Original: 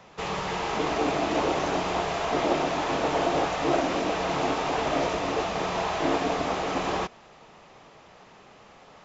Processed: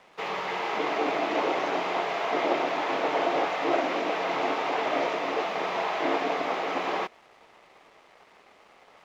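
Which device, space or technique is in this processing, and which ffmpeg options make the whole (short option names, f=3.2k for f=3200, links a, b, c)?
pocket radio on a weak battery: -af "highpass=320,lowpass=4k,aeval=exprs='sgn(val(0))*max(abs(val(0))-0.00119,0)':c=same,equalizer=f=2.1k:t=o:w=0.23:g=5"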